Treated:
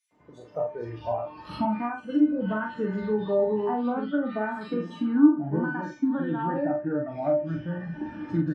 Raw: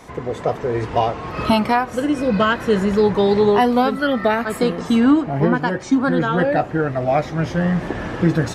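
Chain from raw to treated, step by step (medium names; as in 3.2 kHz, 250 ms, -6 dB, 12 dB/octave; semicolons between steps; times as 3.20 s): feedback comb 300 Hz, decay 0.35 s, harmonics all, mix 90%; spectral noise reduction 12 dB; bands offset in time highs, lows 110 ms, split 2.6 kHz; low-pass that closes with the level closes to 1.4 kHz, closed at -27 dBFS; high-pass 140 Hz 12 dB/octave; tilt EQ -2.5 dB/octave; doubling 42 ms -4 dB; trim +1.5 dB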